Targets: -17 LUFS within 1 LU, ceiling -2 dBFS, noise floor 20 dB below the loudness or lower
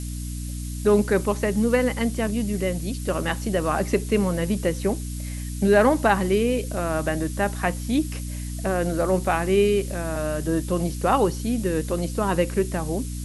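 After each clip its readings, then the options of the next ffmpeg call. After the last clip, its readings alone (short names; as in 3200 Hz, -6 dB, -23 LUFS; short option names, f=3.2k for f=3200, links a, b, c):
hum 60 Hz; harmonics up to 300 Hz; hum level -28 dBFS; noise floor -31 dBFS; noise floor target -44 dBFS; loudness -24.0 LUFS; peak -4.5 dBFS; loudness target -17.0 LUFS
-> -af "bandreject=f=60:t=h:w=6,bandreject=f=120:t=h:w=6,bandreject=f=180:t=h:w=6,bandreject=f=240:t=h:w=6,bandreject=f=300:t=h:w=6"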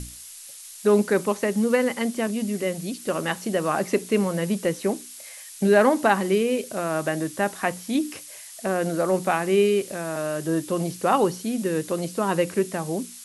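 hum none; noise floor -42 dBFS; noise floor target -44 dBFS
-> -af "afftdn=nr=6:nf=-42"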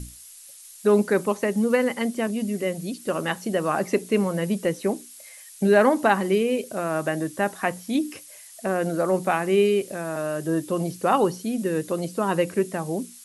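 noise floor -46 dBFS; loudness -24.0 LUFS; peak -5.0 dBFS; loudness target -17.0 LUFS
-> -af "volume=7dB,alimiter=limit=-2dB:level=0:latency=1"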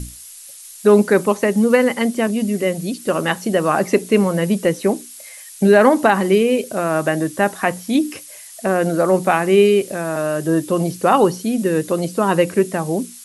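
loudness -17.5 LUFS; peak -2.0 dBFS; noise floor -39 dBFS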